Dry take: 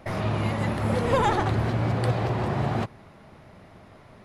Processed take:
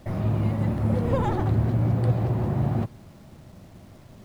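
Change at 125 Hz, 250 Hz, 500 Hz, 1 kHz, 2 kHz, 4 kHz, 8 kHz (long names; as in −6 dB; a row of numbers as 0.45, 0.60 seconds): +3.5 dB, +2.0 dB, −3.0 dB, −6.5 dB, −10.0 dB, below −10 dB, can't be measured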